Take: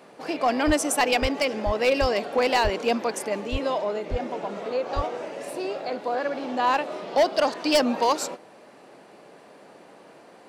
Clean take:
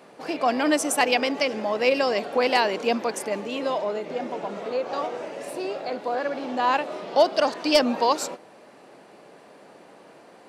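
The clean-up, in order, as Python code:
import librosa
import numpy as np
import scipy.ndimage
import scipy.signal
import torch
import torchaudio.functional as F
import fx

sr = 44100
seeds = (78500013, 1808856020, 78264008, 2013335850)

y = fx.fix_declip(x, sr, threshold_db=-14.0)
y = fx.fix_deplosive(y, sr, at_s=(0.66, 1.21, 1.65, 2.0, 2.63, 3.51, 4.1, 4.95))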